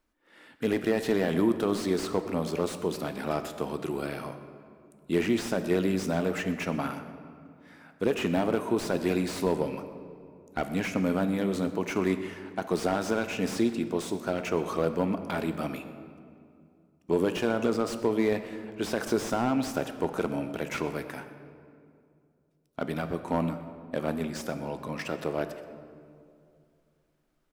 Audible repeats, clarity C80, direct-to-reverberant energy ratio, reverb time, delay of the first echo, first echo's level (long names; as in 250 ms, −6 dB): 1, 11.0 dB, 8.5 dB, 2.4 s, 125 ms, −18.5 dB